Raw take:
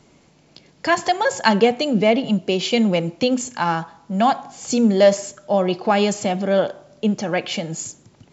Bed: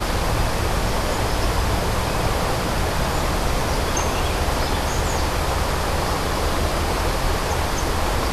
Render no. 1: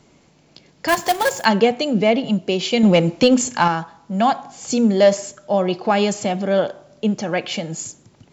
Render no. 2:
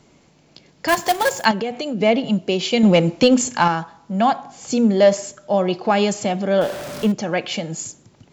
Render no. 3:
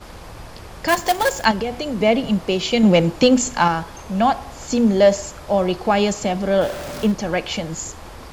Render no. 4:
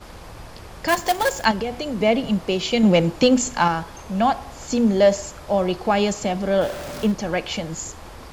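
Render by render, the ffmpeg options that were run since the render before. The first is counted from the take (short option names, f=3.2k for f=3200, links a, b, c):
-filter_complex "[0:a]asettb=1/sr,asplit=3[a][b][c];[a]atrim=end=0.884[d];[b]atrim=start=0.88:end=1.45,asetpts=PTS-STARTPTS,afade=t=in:d=0.004:c=qsin,afade=t=out:st=0.566:d=0.004:c=qsin,acrusher=bits=2:mode=log:mix=0:aa=0.000001[e];[c]atrim=start=1.446[f];[d][e]acrossfade=d=0.004:c1=hsin:c2=qsin[g];[g][f]acrossfade=d=0.004:c1=qsin:c2=hsin,asettb=1/sr,asplit=3[h][i][j];[h]atrim=end=2.834[k];[i]atrim=start=2.83:end=3.68,asetpts=PTS-STARTPTS,afade=t=in:d=0.004:c=qsin,afade=t=out:st=0.846:d=0.004:c=qsin,acontrast=58[l];[j]atrim=start=3.676[m];[k][l]acrossfade=d=0.004:c1=hsin:c2=qsin[n];[n][m]acrossfade=d=0.004:c1=qsin:c2=hsin"
-filter_complex "[0:a]asettb=1/sr,asplit=3[a][b][c];[a]atrim=end=1.514[d];[b]atrim=start=1.51:end=2.01,asetpts=PTS-STARTPTS,afade=t=in:d=0.004:c=qsin,afade=t=out:st=0.496:d=0.004:c=qsin,acompressor=threshold=-22dB:ratio=4:attack=3.2:release=140:knee=1:detection=peak[e];[c]atrim=start=2.006[f];[d][e]acrossfade=d=0.004:c1=hsin:c2=qsin[g];[g][f]acrossfade=d=0.004:c1=qsin:c2=hsin,asettb=1/sr,asplit=3[h][i][j];[h]atrim=end=4.124[k];[i]atrim=start=4.12:end=5.14,asetpts=PTS-STARTPTS,afade=t=in:d=0.004:c=qsin,afade=t=out:st=1.016:d=0.004:c=qsin,highshelf=f=4.9k:g=-5[l];[j]atrim=start=5.136[m];[k][l]acrossfade=d=0.004:c1=hsin:c2=qsin[n];[n][m]acrossfade=d=0.004:c1=qsin:c2=hsin,asettb=1/sr,asplit=3[o][p][q];[o]atrim=end=6.614[r];[p]atrim=start=6.61:end=7.12,asetpts=PTS-STARTPTS,afade=t=in:d=0.004:c=qsin,afade=t=out:st=0.506:d=0.004:c=qsin,aeval=exprs='val(0)+0.5*0.0501*sgn(val(0))':c=same[s];[q]atrim=start=7.116[t];[r][s]acrossfade=d=0.004:c1=hsin:c2=qsin[u];[u][t]acrossfade=d=0.004:c1=qsin:c2=hsin"
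-filter_complex "[1:a]volume=-16.5dB[a];[0:a][a]amix=inputs=2:normalize=0"
-af "volume=-2dB"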